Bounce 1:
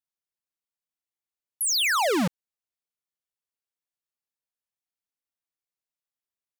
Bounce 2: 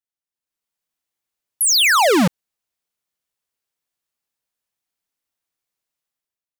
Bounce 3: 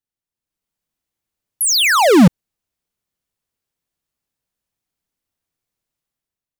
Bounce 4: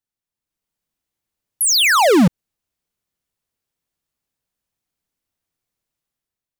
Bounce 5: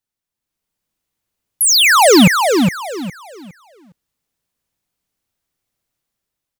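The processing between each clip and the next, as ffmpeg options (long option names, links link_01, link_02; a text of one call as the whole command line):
ffmpeg -i in.wav -af "dynaudnorm=framelen=150:gausssize=7:maxgain=11.5dB,volume=-2.5dB" out.wav
ffmpeg -i in.wav -af "lowshelf=frequency=330:gain=12" out.wav
ffmpeg -i in.wav -af "acompressor=threshold=-9dB:ratio=6" out.wav
ffmpeg -i in.wav -af "aecho=1:1:411|822|1233|1644:0.562|0.152|0.041|0.0111,volume=3.5dB" out.wav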